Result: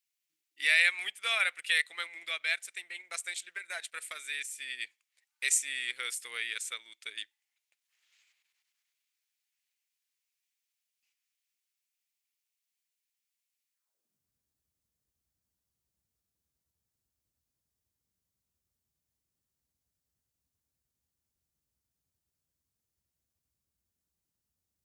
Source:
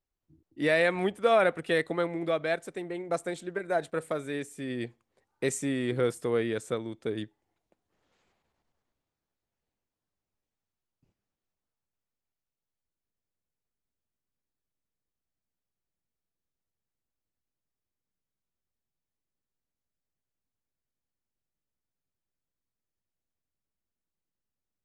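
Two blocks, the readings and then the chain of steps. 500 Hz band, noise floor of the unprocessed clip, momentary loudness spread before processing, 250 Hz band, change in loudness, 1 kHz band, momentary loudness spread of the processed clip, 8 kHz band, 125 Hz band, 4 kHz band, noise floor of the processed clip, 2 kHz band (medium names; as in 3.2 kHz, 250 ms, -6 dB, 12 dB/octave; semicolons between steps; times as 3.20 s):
-24.5 dB, under -85 dBFS, 12 LU, under -30 dB, -1.5 dB, -11.5 dB, 15 LU, +8.5 dB, under -40 dB, +7.0 dB, under -85 dBFS, +4.0 dB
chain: high-pass sweep 2.3 kHz -> 63 Hz, 13.72–14.31 s; tone controls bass +4 dB, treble +9 dB; transient shaper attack 0 dB, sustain -4 dB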